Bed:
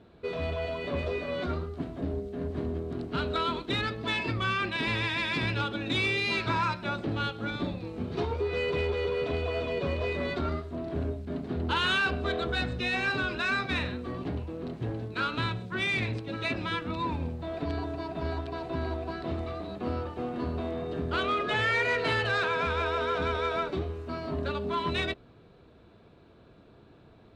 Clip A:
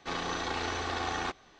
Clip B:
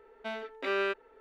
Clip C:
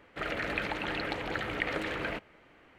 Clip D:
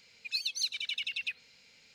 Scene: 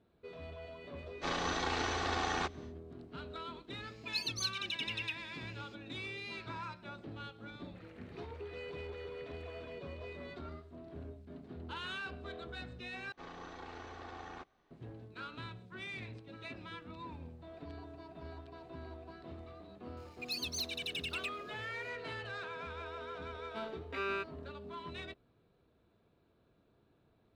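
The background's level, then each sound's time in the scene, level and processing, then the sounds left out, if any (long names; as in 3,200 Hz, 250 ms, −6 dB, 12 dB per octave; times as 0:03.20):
bed −15.5 dB
0:01.16: mix in A −1.5 dB, fades 0.10 s
0:03.81: mix in D −4 dB
0:07.59: mix in C −17 dB + downward compressor 2.5 to 1, threshold −44 dBFS
0:13.12: overwrite with A −13 dB + high-shelf EQ 2,800 Hz −12 dB
0:19.97: mix in D −10 dB + leveller curve on the samples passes 2
0:23.30: mix in B −7.5 dB + comb filter 4.3 ms, depth 62%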